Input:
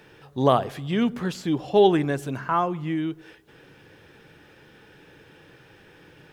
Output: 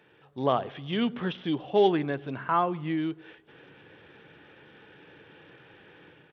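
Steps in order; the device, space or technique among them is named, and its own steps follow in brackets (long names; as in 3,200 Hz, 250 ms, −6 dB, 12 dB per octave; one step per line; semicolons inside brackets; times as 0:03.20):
0:00.62–0:01.62: dynamic equaliser 3,100 Hz, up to +6 dB, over −52 dBFS, Q 3.5
Bluetooth headset (high-pass filter 150 Hz 6 dB per octave; automatic gain control gain up to 7.5 dB; downsampling to 8,000 Hz; level −8 dB; SBC 64 kbit/s 32,000 Hz)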